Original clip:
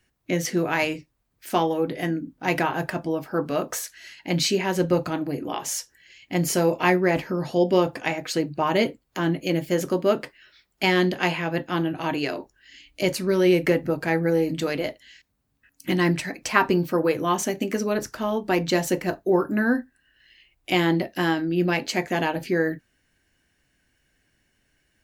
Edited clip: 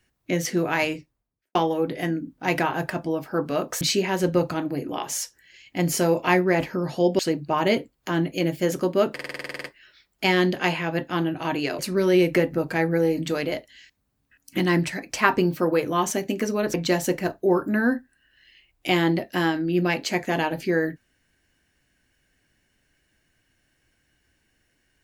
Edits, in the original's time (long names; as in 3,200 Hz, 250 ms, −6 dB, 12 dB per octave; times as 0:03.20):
0:00.90–0:01.55: fade out and dull
0:03.81–0:04.37: remove
0:07.75–0:08.28: remove
0:10.23: stutter 0.05 s, 11 plays
0:12.38–0:13.11: remove
0:18.06–0:18.57: remove